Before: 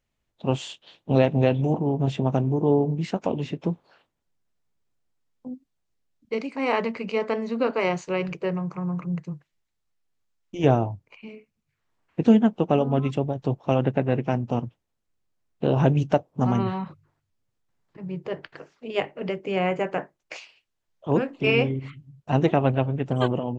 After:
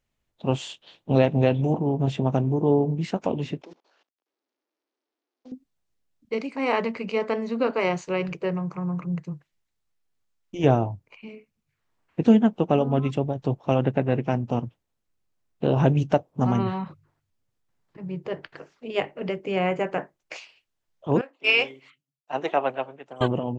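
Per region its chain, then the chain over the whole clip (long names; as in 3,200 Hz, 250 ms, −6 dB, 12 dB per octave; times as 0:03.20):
0:03.62–0:05.52: variable-slope delta modulation 32 kbit/s + Butterworth high-pass 260 Hz + output level in coarse steps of 22 dB
0:21.21–0:23.21: high-pass filter 600 Hz + multiband upward and downward expander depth 100%
whole clip: no processing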